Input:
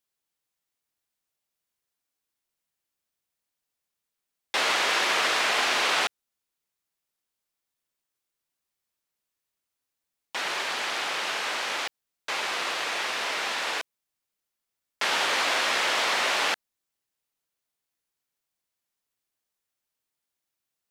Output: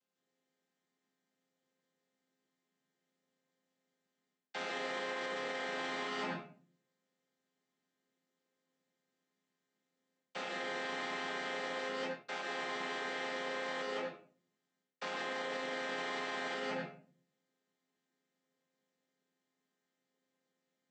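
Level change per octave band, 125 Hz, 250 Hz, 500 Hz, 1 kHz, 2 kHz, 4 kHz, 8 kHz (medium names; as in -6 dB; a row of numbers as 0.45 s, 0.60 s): no reading, -2.0 dB, -5.0 dB, -12.0 dB, -13.0 dB, -17.0 dB, -20.5 dB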